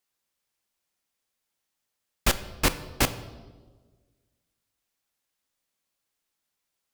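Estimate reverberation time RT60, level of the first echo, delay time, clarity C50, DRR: 1.4 s, none, none, 14.0 dB, 10.5 dB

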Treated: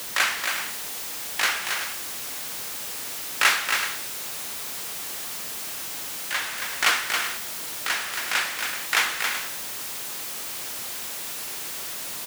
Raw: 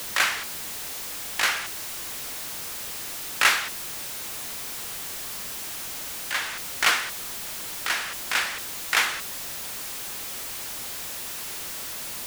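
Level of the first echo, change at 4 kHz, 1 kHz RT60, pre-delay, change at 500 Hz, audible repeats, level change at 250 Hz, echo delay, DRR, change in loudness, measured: -5.5 dB, +1.0 dB, none, none, +1.0 dB, 2, 0.0 dB, 0.274 s, none, +1.0 dB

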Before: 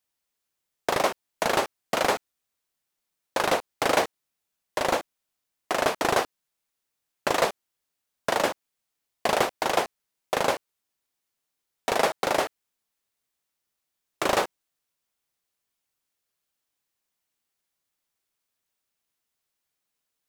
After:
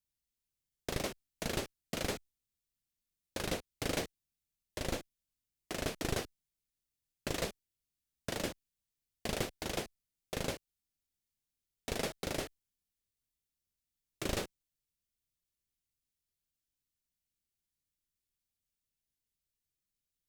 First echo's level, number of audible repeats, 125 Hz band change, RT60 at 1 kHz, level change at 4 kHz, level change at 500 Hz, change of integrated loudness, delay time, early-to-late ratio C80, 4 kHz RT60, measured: none, none, 0.0 dB, none, -9.5 dB, -14.0 dB, -12.5 dB, none, none, none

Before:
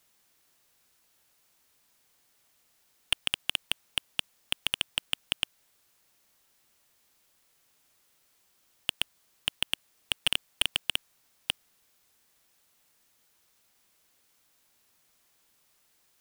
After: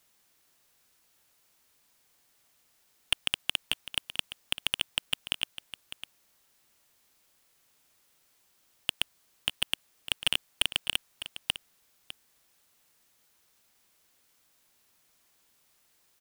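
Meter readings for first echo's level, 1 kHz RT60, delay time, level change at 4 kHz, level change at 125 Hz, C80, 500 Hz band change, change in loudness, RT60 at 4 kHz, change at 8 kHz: -13.0 dB, none, 0.604 s, 0.0 dB, 0.0 dB, none, 0.0 dB, 0.0 dB, none, 0.0 dB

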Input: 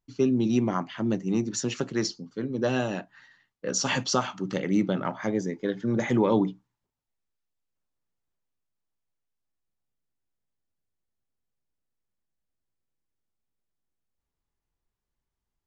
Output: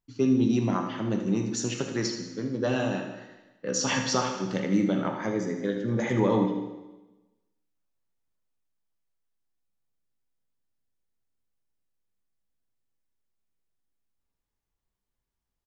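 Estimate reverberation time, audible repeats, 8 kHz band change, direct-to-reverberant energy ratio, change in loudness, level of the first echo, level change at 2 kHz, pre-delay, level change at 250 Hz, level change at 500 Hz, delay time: 1.1 s, 2, n/a, 3.0 dB, 0.0 dB, -10.0 dB, 0.0 dB, 6 ms, 0.0 dB, -0.5 dB, 77 ms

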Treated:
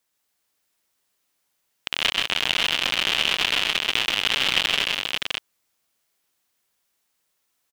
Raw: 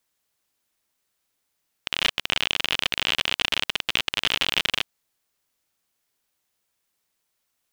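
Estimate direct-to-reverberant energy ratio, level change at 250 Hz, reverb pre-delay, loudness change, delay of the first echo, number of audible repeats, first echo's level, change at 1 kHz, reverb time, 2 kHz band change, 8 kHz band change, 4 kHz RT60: none, +2.0 dB, none, +2.5 dB, 0.132 s, 3, -4.0 dB, +3.0 dB, none, +3.0 dB, +3.0 dB, none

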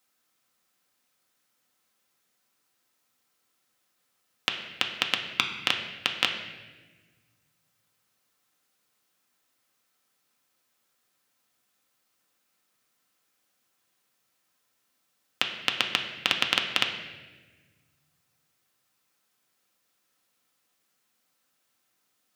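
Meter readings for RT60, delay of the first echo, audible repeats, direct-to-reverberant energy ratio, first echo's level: 1.3 s, none, none, 2.0 dB, none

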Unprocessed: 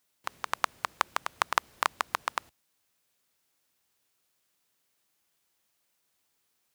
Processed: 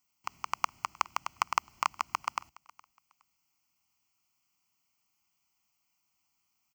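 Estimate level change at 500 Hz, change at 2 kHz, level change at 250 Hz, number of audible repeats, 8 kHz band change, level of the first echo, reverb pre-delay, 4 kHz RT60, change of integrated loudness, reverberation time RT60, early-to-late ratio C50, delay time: -9.0 dB, -5.5 dB, -4.0 dB, 1, -2.0 dB, -23.0 dB, none, none, -2.0 dB, none, none, 0.416 s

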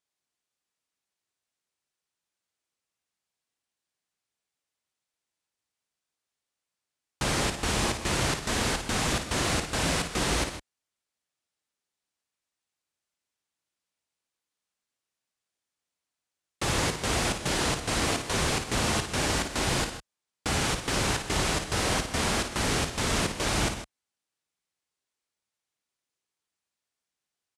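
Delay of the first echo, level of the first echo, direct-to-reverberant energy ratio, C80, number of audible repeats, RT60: 55 ms, -8.0 dB, none, none, 2, none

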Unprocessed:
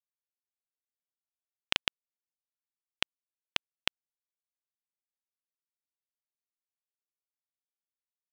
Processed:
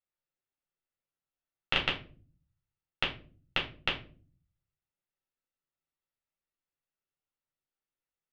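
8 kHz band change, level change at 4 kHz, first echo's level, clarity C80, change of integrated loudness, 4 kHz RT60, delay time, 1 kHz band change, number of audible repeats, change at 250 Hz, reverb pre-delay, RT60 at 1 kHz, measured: under -10 dB, -0.5 dB, none, 16.0 dB, +0.5 dB, 0.25 s, none, +4.5 dB, none, +6.5 dB, 8 ms, 0.30 s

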